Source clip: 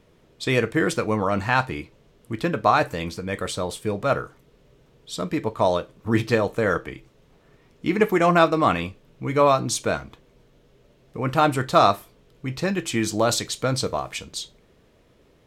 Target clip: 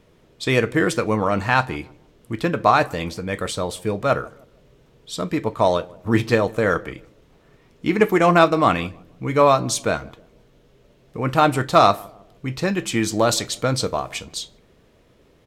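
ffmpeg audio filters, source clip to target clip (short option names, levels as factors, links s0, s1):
-filter_complex "[0:a]asplit=2[s0][s1];[s1]adelay=156,lowpass=f=810:p=1,volume=0.0944,asplit=2[s2][s3];[s3]adelay=156,lowpass=f=810:p=1,volume=0.43,asplit=2[s4][s5];[s5]adelay=156,lowpass=f=810:p=1,volume=0.43[s6];[s0][s2][s4][s6]amix=inputs=4:normalize=0,asoftclip=type=tanh:threshold=0.316,aeval=exprs='0.316*(cos(1*acos(clip(val(0)/0.316,-1,1)))-cos(1*PI/2))+0.0501*(cos(3*acos(clip(val(0)/0.316,-1,1)))-cos(3*PI/2))+0.00447*(cos(5*acos(clip(val(0)/0.316,-1,1)))-cos(5*PI/2))':c=same,volume=2.11"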